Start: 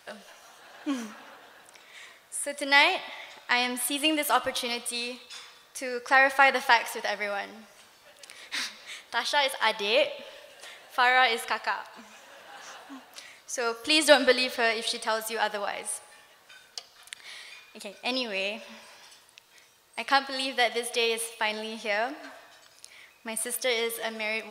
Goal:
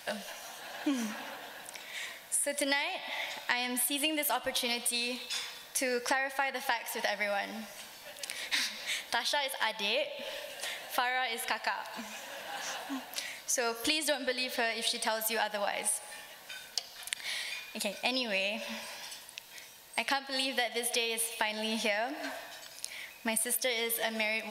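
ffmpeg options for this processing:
ffmpeg -i in.wav -af "equalizer=frequency=100:width_type=o:width=0.33:gain=-10,equalizer=frequency=400:width_type=o:width=0.33:gain=-11,equalizer=frequency=1250:width_type=o:width=0.33:gain=-10,equalizer=frequency=12500:width_type=o:width=0.33:gain=6,acompressor=threshold=-35dB:ratio=16,volume=7.5dB" out.wav

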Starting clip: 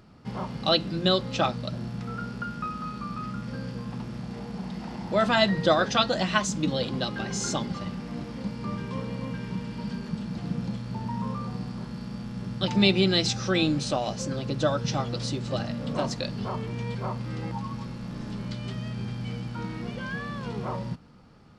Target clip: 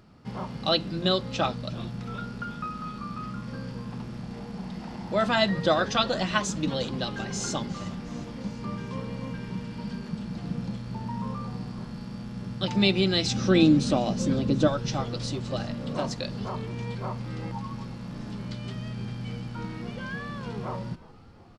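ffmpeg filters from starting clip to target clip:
ffmpeg -i in.wav -filter_complex "[0:a]asettb=1/sr,asplit=3[link_01][link_02][link_03];[link_01]atrim=end=13.314[link_04];[link_02]atrim=start=13.31:end=14.68,asetpts=PTS-STARTPTS,afade=type=in:duration=0.004:curve=qsin,afade=type=out:start_time=1.366:duration=0.004:curve=qsin,equalizer=frequency=250:width_type=o:width=1.5:gain=10.5[link_05];[link_03]atrim=start=14.676[link_06];[link_04][link_05]acrossfade=duration=0.004:curve1=hsin:curve2=qsin[link_07];[link_07][link_06]acrossfade=duration=0.004:curve1=qsin:curve2=hsin,asplit=7[link_08][link_09][link_10][link_11][link_12][link_13][link_14];[link_09]adelay=359,afreqshift=-110,volume=-20dB[link_15];[link_10]adelay=718,afreqshift=-220,volume=-23.7dB[link_16];[link_11]adelay=1077,afreqshift=-330,volume=-27.5dB[link_17];[link_12]adelay=1436,afreqshift=-440,volume=-31.2dB[link_18];[link_13]adelay=1795,afreqshift=-550,volume=-35dB[link_19];[link_14]adelay=2154,afreqshift=-660,volume=-38.7dB[link_20];[link_08][link_15][link_16][link_17][link_18][link_19][link_20]amix=inputs=7:normalize=0,volume=-1.5dB" out.wav

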